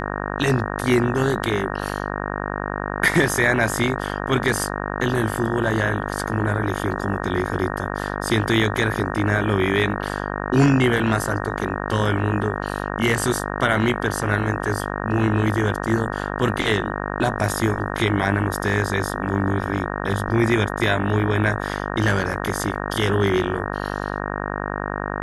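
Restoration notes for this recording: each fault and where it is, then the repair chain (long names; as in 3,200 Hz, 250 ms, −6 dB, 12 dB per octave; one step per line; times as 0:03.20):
mains buzz 50 Hz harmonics 37 −27 dBFS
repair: hum removal 50 Hz, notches 37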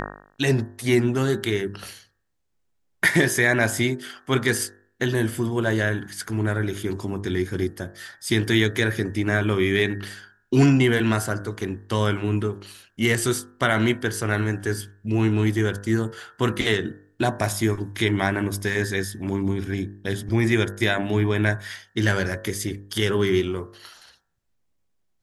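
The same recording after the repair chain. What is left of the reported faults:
none of them is left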